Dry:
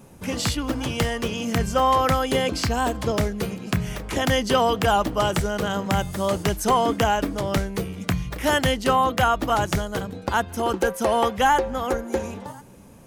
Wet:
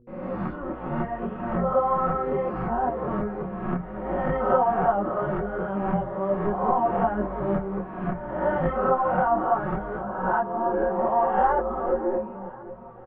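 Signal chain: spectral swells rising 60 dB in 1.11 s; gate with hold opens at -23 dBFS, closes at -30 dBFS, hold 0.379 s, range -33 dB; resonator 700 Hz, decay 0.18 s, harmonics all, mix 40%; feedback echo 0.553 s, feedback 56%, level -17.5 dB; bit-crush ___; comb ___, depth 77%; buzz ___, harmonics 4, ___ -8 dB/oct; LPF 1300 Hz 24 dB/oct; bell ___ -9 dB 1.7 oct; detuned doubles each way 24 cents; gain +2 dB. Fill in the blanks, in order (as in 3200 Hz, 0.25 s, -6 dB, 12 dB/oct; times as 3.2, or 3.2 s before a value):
8-bit, 5.4 ms, 120 Hz, -48 dBFS, 93 Hz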